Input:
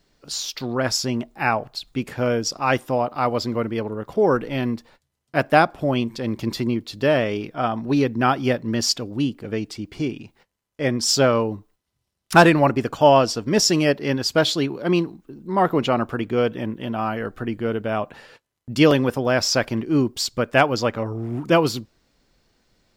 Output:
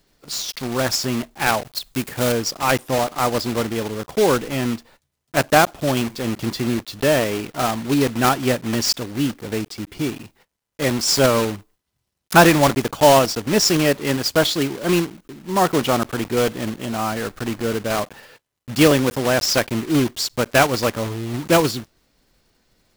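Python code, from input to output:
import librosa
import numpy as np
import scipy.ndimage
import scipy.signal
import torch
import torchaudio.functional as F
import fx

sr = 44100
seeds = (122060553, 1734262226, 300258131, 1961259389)

y = fx.block_float(x, sr, bits=3)
y = fx.high_shelf(y, sr, hz=6600.0, db=7.5, at=(1.63, 2.32))
y = y * 10.0 ** (1.0 / 20.0)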